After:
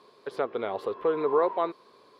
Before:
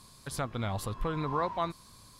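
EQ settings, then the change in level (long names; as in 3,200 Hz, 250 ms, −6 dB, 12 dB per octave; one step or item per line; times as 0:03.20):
high-pass with resonance 420 Hz, resonance Q 4.9
high-frequency loss of the air 370 metres
high-shelf EQ 4,500 Hz +7 dB
+2.5 dB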